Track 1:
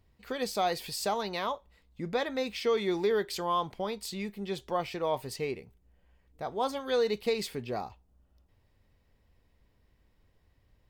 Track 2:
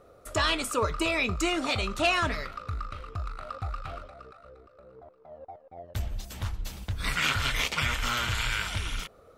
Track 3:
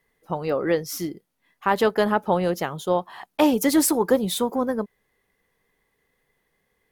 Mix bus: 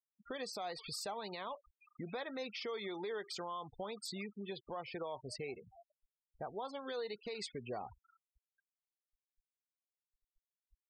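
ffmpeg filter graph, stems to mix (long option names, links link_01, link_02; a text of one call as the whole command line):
ffmpeg -i stem1.wav -i stem2.wav -filter_complex "[0:a]acrossover=split=470[link_01][link_02];[link_01]acompressor=threshold=-40dB:ratio=6[link_03];[link_03][link_02]amix=inputs=2:normalize=0,volume=-3.5dB[link_04];[1:a]highpass=630,acompressor=threshold=-35dB:ratio=10,aeval=exprs='(mod(39.8*val(0)+1,2)-1)/39.8':channel_layout=same,volume=-10.5dB,alimiter=level_in=25.5dB:limit=-24dB:level=0:latency=1:release=263,volume=-25.5dB,volume=0dB[link_05];[link_04][link_05]amix=inputs=2:normalize=0,afftfilt=real='re*gte(hypot(re,im),0.00794)':imag='im*gte(hypot(re,im),0.00794)':win_size=1024:overlap=0.75,alimiter=level_in=9dB:limit=-24dB:level=0:latency=1:release=151,volume=-9dB" out.wav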